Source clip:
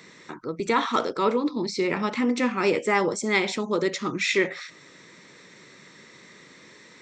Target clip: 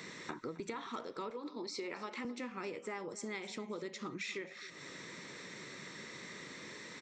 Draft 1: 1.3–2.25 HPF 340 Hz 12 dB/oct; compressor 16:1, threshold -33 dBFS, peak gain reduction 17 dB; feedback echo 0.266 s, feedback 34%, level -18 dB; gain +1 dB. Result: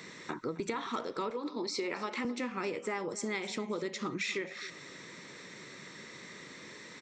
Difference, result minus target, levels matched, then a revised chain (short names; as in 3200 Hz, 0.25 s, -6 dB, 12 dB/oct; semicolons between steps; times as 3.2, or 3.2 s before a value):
compressor: peak gain reduction -6.5 dB
1.3–2.25 HPF 340 Hz 12 dB/oct; compressor 16:1, threshold -40 dBFS, peak gain reduction 23.5 dB; feedback echo 0.266 s, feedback 34%, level -18 dB; gain +1 dB